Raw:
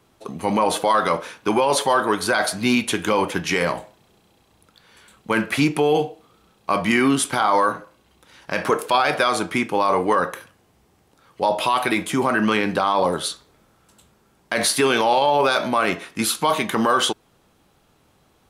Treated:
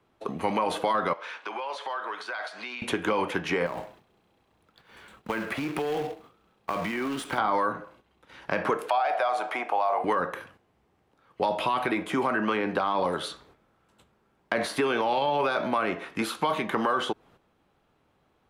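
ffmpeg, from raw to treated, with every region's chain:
ffmpeg -i in.wav -filter_complex "[0:a]asettb=1/sr,asplit=3[link_01][link_02][link_03];[link_01]atrim=end=1.134[link_04];[link_02]atrim=start=1.13:end=2.82,asetpts=PTS-STARTPTS,afade=type=in:duration=0.004:curve=qsin,afade=type=out:start_time=1.686:duration=0.004:curve=qsin,tiltshelf=frequency=630:gain=-6.5,acompressor=threshold=-32dB:ratio=6:attack=3.2:release=140:knee=1:detection=peak,highpass=420,lowpass=5600[link_05];[link_03]atrim=start=2.816[link_06];[link_04][link_05]acrossfade=duration=0.004:curve1=hsin:curve2=qsin[link_07];[link_07][link_06]acrossfade=duration=0.004:curve1=qsin:curve2=hsin,asettb=1/sr,asplit=3[link_08][link_09][link_10];[link_08]atrim=end=3.664[link_11];[link_09]atrim=start=3.66:end=7.38,asetpts=PTS-STARTPTS,afade=type=in:duration=0.004:curve=qsin,afade=type=out:start_time=3.716:duration=0.004:curve=qsin,acompressor=threshold=-25dB:ratio=10:attack=3.2:release=140:knee=1:detection=peak,acrusher=bits=2:mode=log:mix=0:aa=0.000001[link_12];[link_10]atrim=start=7.376[link_13];[link_11][link_12]acrossfade=duration=0.004:curve1=hsin:curve2=qsin[link_14];[link_14][link_13]acrossfade=duration=0.004:curve1=qsin:curve2=hsin,asettb=1/sr,asplit=3[link_15][link_16][link_17];[link_15]atrim=end=8.894[link_18];[link_16]atrim=start=8.89:end=10.04,asetpts=PTS-STARTPTS,afade=type=in:duration=0.004:curve=qsin,afade=type=out:start_time=1.146:duration=0.004:curve=qsin,highpass=frequency=700:width_type=q:width=8,acompressor=threshold=-28dB:ratio=1.5:attack=3.2:release=140:knee=1:detection=peak[link_19];[link_17]atrim=start=10.036[link_20];[link_18][link_19]acrossfade=duration=0.004:curve1=hsin:curve2=qsin[link_21];[link_21][link_20]acrossfade=duration=0.004:curve1=qsin:curve2=hsin,agate=range=-9dB:threshold=-52dB:ratio=16:detection=peak,bass=frequency=250:gain=-3,treble=frequency=4000:gain=-13,acrossover=split=310|1400[link_22][link_23][link_24];[link_22]acompressor=threshold=-37dB:ratio=4[link_25];[link_23]acompressor=threshold=-29dB:ratio=4[link_26];[link_24]acompressor=threshold=-36dB:ratio=4[link_27];[link_25][link_26][link_27]amix=inputs=3:normalize=0,volume=2dB" out.wav

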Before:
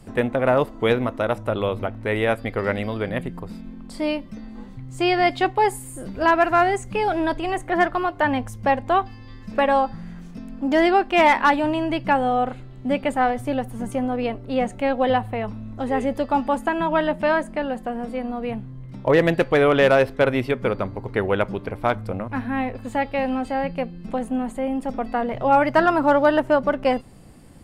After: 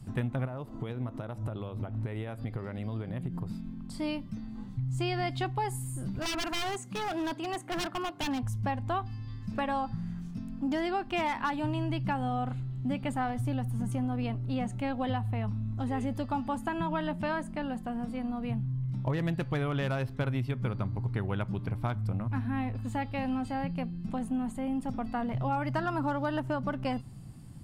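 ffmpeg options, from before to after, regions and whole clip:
ffmpeg -i in.wav -filter_complex "[0:a]asettb=1/sr,asplit=3[link_01][link_02][link_03];[link_01]atrim=end=0.454[link_04];[link_02]atrim=start=0.45:end=3.48,asetpts=PTS-STARTPTS,afade=type=in:duration=0.004:curve=qsin,afade=type=out:start_time=3.026:duration=0.004:curve=qsin,equalizer=frequency=470:width=0.7:gain=7.5,acompressor=threshold=-29dB:ratio=4:attack=3.2:release=140:knee=1:detection=peak[link_05];[link_03]atrim=start=3.476[link_06];[link_04][link_05]acrossfade=duration=0.004:curve1=hsin:curve2=qsin[link_07];[link_07][link_06]acrossfade=duration=0.004:curve1=qsin:curve2=hsin,asettb=1/sr,asplit=3[link_08][link_09][link_10];[link_08]atrim=end=6.194[link_11];[link_09]atrim=start=6.19:end=8.43,asetpts=PTS-STARTPTS,afade=type=in:duration=0.004:curve=qsin,afade=type=out:start_time=2.236:duration=0.004:curve=qsin,highpass=frequency=190:width=0.5412,highpass=frequency=190:width=1.3066,aeval=exprs='0.119*(abs(mod(val(0)/0.119+3,4)-2)-1)':channel_layout=same[link_12];[link_10]atrim=start=8.426[link_13];[link_11][link_12]acrossfade=duration=0.004:curve1=hsin:curve2=qsin[link_14];[link_14][link_13]acrossfade=duration=0.004:curve1=qsin:curve2=hsin,equalizer=frequency=125:width_type=o:width=1:gain=12,equalizer=frequency=500:width_type=o:width=1:gain=-10,equalizer=frequency=2000:width_type=o:width=1:gain=-5,acompressor=threshold=-22dB:ratio=6,volume=-5dB" out.wav

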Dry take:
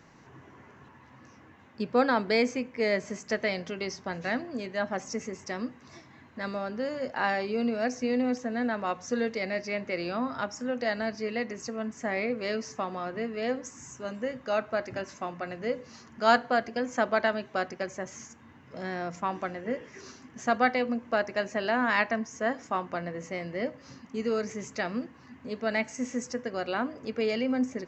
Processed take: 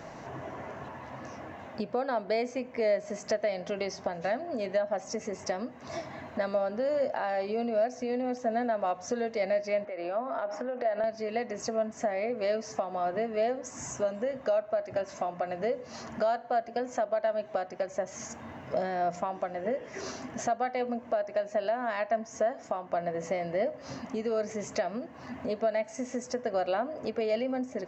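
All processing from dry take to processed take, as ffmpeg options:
ffmpeg -i in.wav -filter_complex "[0:a]asettb=1/sr,asplit=3[link_01][link_02][link_03];[link_01]atrim=end=9.854[link_04];[link_02]atrim=start=9.85:end=11.04,asetpts=PTS-STARTPTS,afade=type=in:duration=0.004:curve=qsin,afade=type=out:start_time=1.186:duration=0.004:curve=qsin,highpass=300,lowpass=2300,acompressor=threshold=-41dB:ratio=12:attack=3.2:release=140:knee=1:detection=peak[link_05];[link_03]atrim=start=11.036[link_06];[link_04][link_05]acrossfade=duration=0.004:curve1=hsin:curve2=qsin[link_07];[link_07][link_06]acrossfade=duration=0.004:curve1=qsin:curve2=hsin,acompressor=threshold=-43dB:ratio=4,equalizer=frequency=650:width_type=o:width=0.61:gain=14.5,alimiter=level_in=3.5dB:limit=-24dB:level=0:latency=1:release=318,volume=-3.5dB,volume=8dB" out.wav

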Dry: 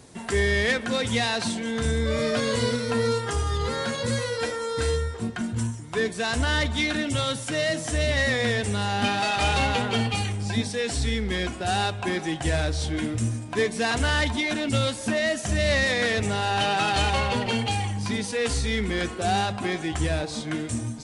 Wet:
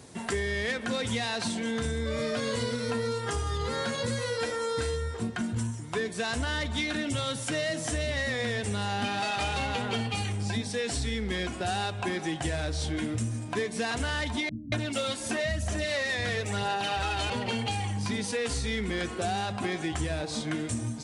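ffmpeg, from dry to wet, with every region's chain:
ffmpeg -i in.wav -filter_complex "[0:a]asettb=1/sr,asplit=3[link_01][link_02][link_03];[link_01]atrim=end=14.494[link_04];[link_02]atrim=start=14.49:end=17.3,asetpts=PTS-STARTPTS,afade=type=in:duration=0.004:curve=qsin,afade=type=out:start_time=2.806:duration=0.004:curve=qsin,aphaser=in_gain=1:out_gain=1:delay=3:decay=0.39:speed=1:type=sinusoidal,acrossover=split=200[link_05][link_06];[link_06]adelay=230[link_07];[link_05][link_07]amix=inputs=2:normalize=0,atrim=end_sample=123921[link_08];[link_03]atrim=start=17.296[link_09];[link_04][link_08]acrossfade=duration=0.004:curve1=hsin:curve2=qsin[link_10];[link_10][link_09]acrossfade=duration=0.004:curve1=qsin:curve2=hsin,highpass=58,acompressor=threshold=-27dB:ratio=6" out.wav

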